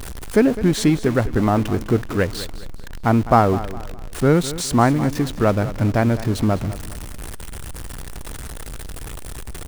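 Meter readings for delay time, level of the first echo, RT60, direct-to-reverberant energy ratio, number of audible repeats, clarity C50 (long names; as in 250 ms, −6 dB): 206 ms, −15.0 dB, no reverb audible, no reverb audible, 3, no reverb audible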